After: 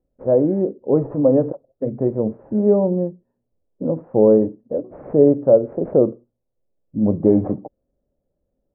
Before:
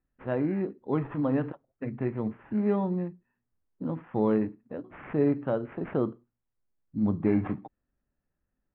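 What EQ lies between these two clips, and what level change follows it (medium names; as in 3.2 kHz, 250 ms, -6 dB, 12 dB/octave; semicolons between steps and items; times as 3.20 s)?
resonant low-pass 550 Hz, resonance Q 4; +6.5 dB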